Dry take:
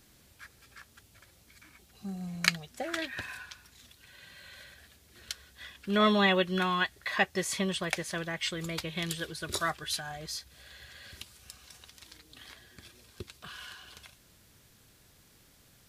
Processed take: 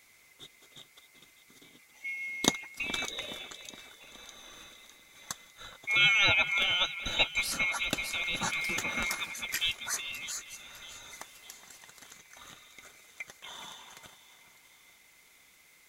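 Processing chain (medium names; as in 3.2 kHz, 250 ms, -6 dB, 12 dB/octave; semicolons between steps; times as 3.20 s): split-band scrambler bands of 2 kHz; on a send: two-band feedback delay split 2.9 kHz, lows 419 ms, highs 604 ms, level -13.5 dB; 8.19–9.15 s: on the sum: level flattener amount 50%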